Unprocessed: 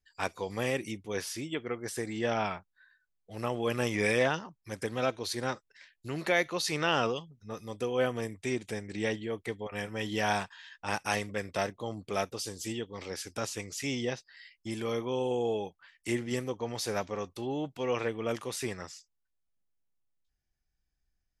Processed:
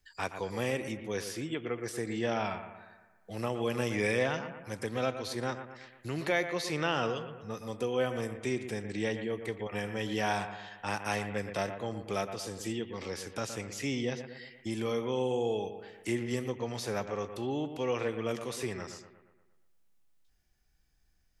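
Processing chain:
bucket-brigade delay 117 ms, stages 2,048, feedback 43%, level −11 dB
harmonic and percussive parts rebalanced percussive −4 dB
multiband upward and downward compressor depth 40%

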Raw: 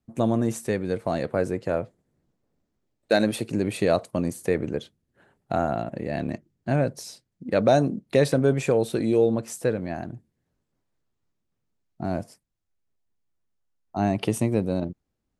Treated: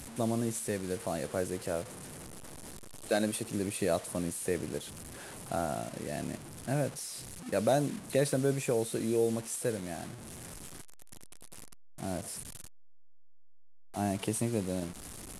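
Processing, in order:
linear delta modulator 64 kbit/s, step −32.5 dBFS
parametric band 9,900 Hz +11.5 dB 0.79 octaves
level −8.5 dB

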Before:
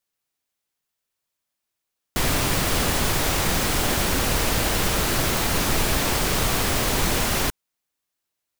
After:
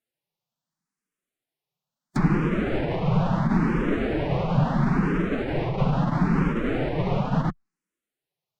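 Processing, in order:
loose part that buzzes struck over −35 dBFS, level −23 dBFS
spectral tilt −2 dB per octave
phase-vocoder pitch shift with formants kept +3 semitones
low shelf with overshoot 110 Hz −11 dB, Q 3
treble cut that deepens with the level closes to 1,800 Hz, closed at −20.5 dBFS
frequency shifter mixed with the dry sound +0.74 Hz
level +1 dB

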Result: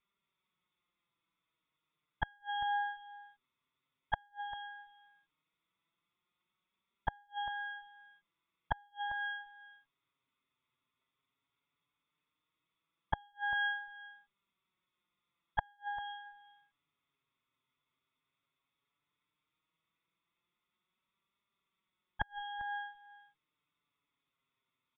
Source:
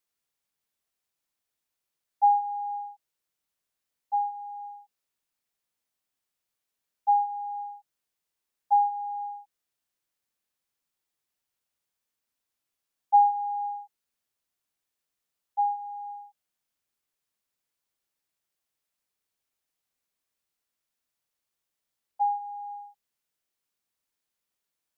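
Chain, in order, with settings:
lower of the sound and its delayed copy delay 0.87 ms
flanger 0.14 Hz, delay 5 ms, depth 2.8 ms, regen +18%
dynamic equaliser 840 Hz, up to +4 dB, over −42 dBFS, Q 1.3
gate with flip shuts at −23 dBFS, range −38 dB
on a send: single-tap delay 396 ms −18 dB
on the sum: downsampling to 8,000 Hz
notch comb filter 790 Hz
level +10.5 dB

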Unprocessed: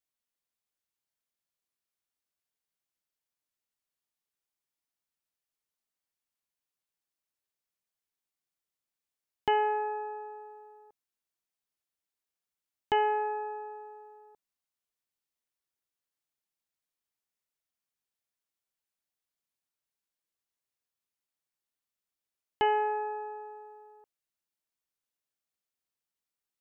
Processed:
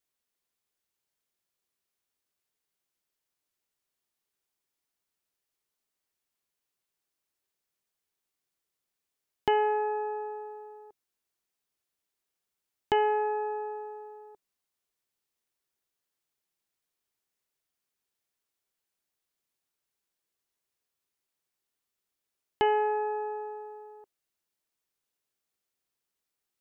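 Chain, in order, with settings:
parametric band 390 Hz +5 dB 0.36 octaves
in parallel at +1.5 dB: downward compressor, threshold −34 dBFS, peak gain reduction 12 dB
on the sum: level −2.5 dB

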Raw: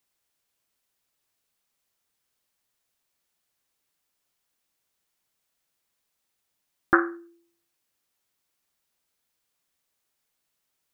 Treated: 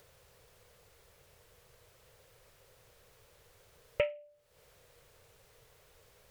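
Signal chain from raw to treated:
high-shelf EQ 2,000 Hz −10.5 dB
upward compression, threshold −25 dBFS
on a send: delay with a high-pass on its return 90 ms, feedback 36%, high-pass 1,700 Hz, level −20 dB
on the sum: wrong playback speed 45 rpm record played at 78 rpm
drawn EQ curve 120 Hz 0 dB, 270 Hz −22 dB, 480 Hz +1 dB, 760 Hz −12 dB

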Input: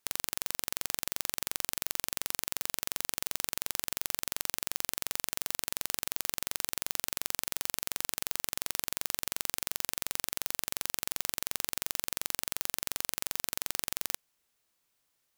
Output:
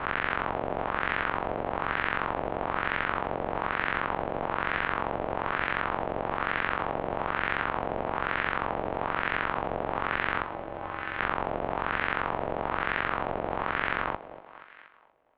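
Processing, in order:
peak hold with a rise ahead of every peak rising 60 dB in 0.54 s
0:10.42–0:11.19: tuned comb filter 120 Hz, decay 0.17 s, harmonics odd, mix 70%
on a send: feedback echo with a high-pass in the loop 238 ms, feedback 55%, high-pass 510 Hz, level −11.5 dB
on the sum: auto-filter low-pass sine 1.1 Hz 910–2,000 Hz
in parallel at −2.5 dB: speech leveller within 3 dB
on the sum: single-sideband voice off tune −270 Hz 220–3,600 Hz
level +3.5 dB

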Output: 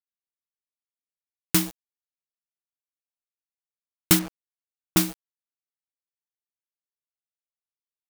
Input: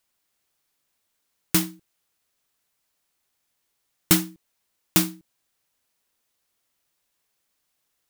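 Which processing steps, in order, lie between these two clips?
0:04.19–0:04.97: low-pass filter 1,300 Hz
bit reduction 6 bits

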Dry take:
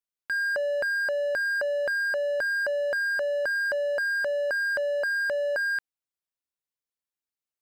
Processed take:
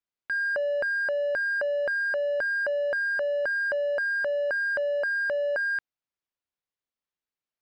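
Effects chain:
in parallel at −10 dB: soft clipping −38 dBFS, distortion −8 dB
on the sum: high-frequency loss of the air 130 metres

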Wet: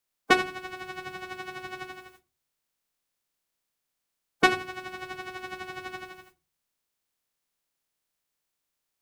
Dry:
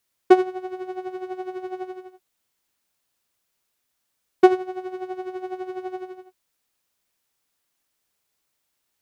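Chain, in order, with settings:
ceiling on every frequency bin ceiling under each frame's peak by 27 dB
rectangular room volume 130 cubic metres, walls furnished, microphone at 0.45 metres
level −6.5 dB

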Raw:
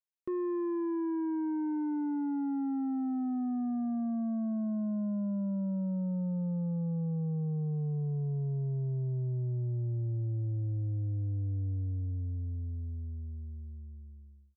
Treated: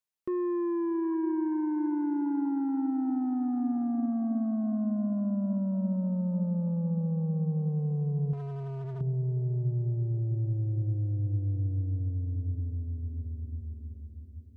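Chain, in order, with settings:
on a send: feedback delay with all-pass diffusion 722 ms, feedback 42%, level −11 dB
0:08.33–0:09.01: on the sum: hard clipping −38 dBFS, distortion −17 dB
level +3 dB

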